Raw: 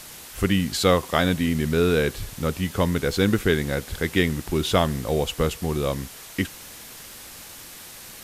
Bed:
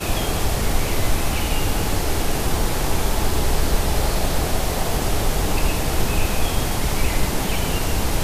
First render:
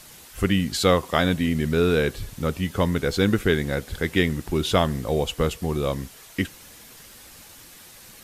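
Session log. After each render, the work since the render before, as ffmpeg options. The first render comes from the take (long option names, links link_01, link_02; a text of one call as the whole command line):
ffmpeg -i in.wav -af "afftdn=noise_reduction=6:noise_floor=-42" out.wav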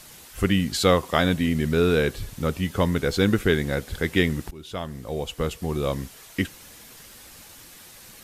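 ffmpeg -i in.wav -filter_complex "[0:a]asplit=2[link_01][link_02];[link_01]atrim=end=4.51,asetpts=PTS-STARTPTS,afade=type=out:start_time=4.506:duration=0.004:curve=hsin:silence=0.0794328[link_03];[link_02]atrim=start=4.51,asetpts=PTS-STARTPTS,afade=type=in:duration=1.46:silence=0.0794328[link_04];[link_03][link_04]concat=n=2:v=0:a=1" out.wav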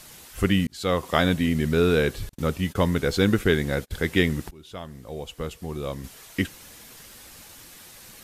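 ffmpeg -i in.wav -filter_complex "[0:a]asettb=1/sr,asplit=3[link_01][link_02][link_03];[link_01]atrim=end=2.294[link_04];[link_02]atrim=start=2.29:end=3.91,asetpts=PTS-STARTPTS,afade=type=in:duration=0.004:curve=qsin,afade=type=out:start_time=1.616:duration=0.004:curve=qsin,agate=range=-34dB:threshold=-38dB:ratio=16:release=100:detection=peak[link_05];[link_03]atrim=start=3.906[link_06];[link_04][link_05]acrossfade=duration=0.004:curve1=hsin:curve2=qsin[link_07];[link_07][link_06]acrossfade=duration=0.004:curve1=qsin:curve2=hsin,asplit=4[link_08][link_09][link_10][link_11];[link_08]atrim=end=0.67,asetpts=PTS-STARTPTS,afade=type=out:start_time=0.666:duration=0.004:curve=hsin[link_12];[link_09]atrim=start=0.67:end=4.492,asetpts=PTS-STARTPTS,afade=type=in:duration=0.44[link_13];[link_10]atrim=start=4.488:end=6.042,asetpts=PTS-STARTPTS,volume=-5.5dB[link_14];[link_11]atrim=start=6.038[link_15];[link_12][link_13]concat=n=2:v=0:a=1[link_16];[link_16][link_14]acrossfade=duration=0.004:curve1=hsin:curve2=hsin[link_17];[link_17][link_15]acrossfade=duration=0.004:curve1=hsin:curve2=hsin" out.wav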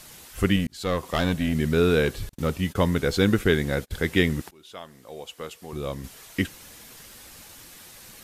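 ffmpeg -i in.wav -filter_complex "[0:a]asettb=1/sr,asplit=3[link_01][link_02][link_03];[link_01]atrim=end=0.564[link_04];[link_02]atrim=start=0.56:end=1.53,asetpts=PTS-STARTPTS,afade=type=in:duration=0.004:curve=qsin,afade=type=out:start_time=0.966:duration=0.004:curve=qsin,aeval=exprs='(tanh(6.31*val(0)+0.4)-tanh(0.4))/6.31':channel_layout=same[link_05];[link_03]atrim=start=1.526[link_06];[link_04][link_05]acrossfade=duration=0.004:curve1=hsin:curve2=qsin[link_07];[link_07][link_06]acrossfade=duration=0.004:curve1=qsin:curve2=hsin,asettb=1/sr,asplit=3[link_08][link_09][link_10];[link_08]atrim=end=2.054[link_11];[link_09]atrim=start=2.05:end=2.52,asetpts=PTS-STARTPTS,afade=type=in:duration=0.004:curve=qsin,afade=type=out:start_time=0.466:duration=0.004:curve=qsin,asoftclip=type=hard:threshold=-17.5dB[link_12];[link_10]atrim=start=2.516[link_13];[link_11][link_12]acrossfade=duration=0.004:curve1=hsin:curve2=qsin[link_14];[link_14][link_13]acrossfade=duration=0.004:curve1=qsin:curve2=hsin,asettb=1/sr,asplit=3[link_15][link_16][link_17];[link_15]atrim=end=4.414[link_18];[link_16]atrim=start=4.41:end=5.73,asetpts=PTS-STARTPTS,afade=type=in:duration=0.004:curve=qsin,afade=type=out:start_time=1.316:duration=0.004:curve=qsin,highpass=frequency=530:poles=1[link_19];[link_17]atrim=start=5.726[link_20];[link_18][link_19]acrossfade=duration=0.004:curve1=hsin:curve2=qsin[link_21];[link_21][link_20]acrossfade=duration=0.004:curve1=qsin:curve2=hsin" out.wav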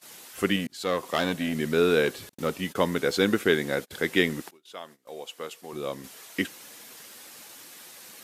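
ffmpeg -i in.wav -af "highpass=250,agate=range=-19dB:threshold=-48dB:ratio=16:detection=peak" out.wav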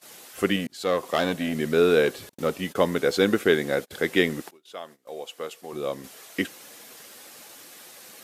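ffmpeg -i in.wav -af "equalizer=frequency=580:width=0.89:gain=4,bandreject=frequency=940:width=18" out.wav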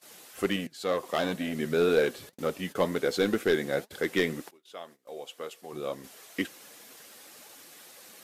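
ffmpeg -i in.wav -af "aeval=exprs='clip(val(0),-1,0.211)':channel_layout=same,flanger=delay=1.6:depth=5.7:regen=75:speed=2:shape=triangular" out.wav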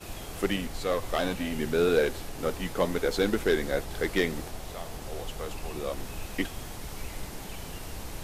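ffmpeg -i in.wav -i bed.wav -filter_complex "[1:a]volume=-18dB[link_01];[0:a][link_01]amix=inputs=2:normalize=0" out.wav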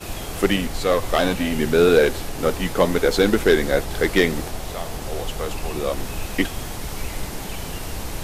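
ffmpeg -i in.wav -af "volume=9dB,alimiter=limit=-3dB:level=0:latency=1" out.wav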